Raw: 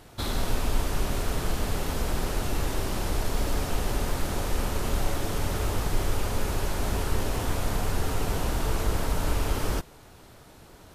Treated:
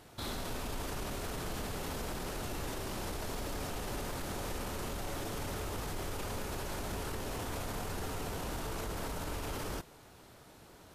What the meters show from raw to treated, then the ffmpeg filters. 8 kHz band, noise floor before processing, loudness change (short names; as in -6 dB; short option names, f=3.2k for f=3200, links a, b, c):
-7.5 dB, -51 dBFS, -9.5 dB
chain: -af "lowshelf=f=67:g=-9,alimiter=level_in=1.5dB:limit=-24dB:level=0:latency=1:release=20,volume=-1.5dB,volume=-4.5dB"